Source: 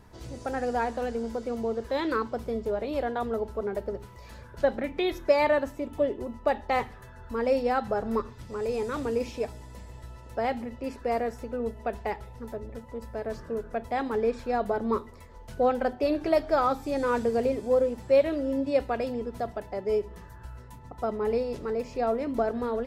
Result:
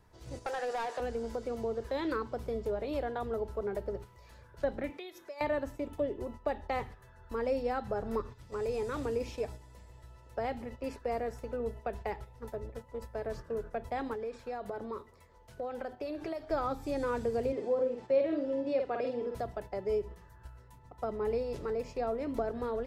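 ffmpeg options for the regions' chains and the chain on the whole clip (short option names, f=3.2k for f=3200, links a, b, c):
-filter_complex "[0:a]asettb=1/sr,asplit=3[a][b][c];[a]atrim=end=0.464[d];[b]atrim=start=0.46:end=1,asetpts=PTS-STARTPTS,afade=t=in:d=0.004:c=qsin,afade=t=out:st=0.536:d=0.004:c=qsin,highpass=f=400:w=0.5412,highpass=f=400:w=1.3066,asoftclip=type=hard:threshold=-26dB,asplit=2[e][f];[f]highpass=f=720:p=1,volume=14dB,asoftclip=type=tanh:threshold=-23dB[g];[e][g]amix=inputs=2:normalize=0,lowpass=f=7.5k:p=1,volume=-6dB[h];[c]atrim=start=0.996[i];[d][h]acrossfade=d=0.004:c1=hsin:c2=qsin[j];[j][i]acrossfade=d=0.004:c1=qsin:c2=hsin,asettb=1/sr,asplit=3[k][l][m];[k]atrim=end=4.904[n];[l]atrim=start=4.9:end=5.41,asetpts=PTS-STARTPTS,afade=t=in:d=0.004:c=qsin,afade=t=out:st=0.506:d=0.004:c=qsin,highpass=250,acompressor=threshold=-37dB:ratio=12:attack=3.2:release=140:knee=1:detection=peak,highshelf=f=3.3k:g=6[o];[m]atrim=start=5.406[p];[n][o]acrossfade=d=0.004:c1=hsin:c2=qsin[q];[q][p]acrossfade=d=0.004:c1=qsin:c2=hsin,asettb=1/sr,asplit=3[r][s][t];[r]atrim=end=14.134[u];[s]atrim=start=14.13:end=16.5,asetpts=PTS-STARTPTS,afade=t=in:d=0.004:c=qsin,afade=t=out:st=2.366:d=0.004:c=qsin,acompressor=threshold=-32dB:ratio=5:attack=3.2:release=140:knee=1:detection=peak,highpass=f=80:p=1[v];[t]atrim=start=16.496[w];[u][v]acrossfade=d=0.004:c1=hsin:c2=qsin[x];[x][w]acrossfade=d=0.004:c1=qsin:c2=hsin,asettb=1/sr,asplit=3[y][z][aa];[y]atrim=end=17.524[ab];[z]atrim=start=17.52:end=19.35,asetpts=PTS-STARTPTS,afade=t=in:d=0.004:c=qsin,afade=t=out:st=1.826:d=0.004:c=qsin,highpass=280,lowpass=4.9k,lowshelf=f=460:g=4.5,asplit=2[ac][ad];[ad]adelay=50,volume=-5dB[ae];[ac][ae]amix=inputs=2:normalize=0,atrim=end_sample=80703[af];[aa]atrim=start=19.346[ag];[ab][af]acrossfade=d=0.004:c1=hsin:c2=qsin[ah];[ah][ag]acrossfade=d=0.004:c1=qsin:c2=hsin,agate=range=-8dB:threshold=-39dB:ratio=16:detection=peak,equalizer=f=230:w=3:g=-7,acrossover=split=350[ai][aj];[aj]acompressor=threshold=-37dB:ratio=2[ak];[ai][ak]amix=inputs=2:normalize=0,volume=-1dB"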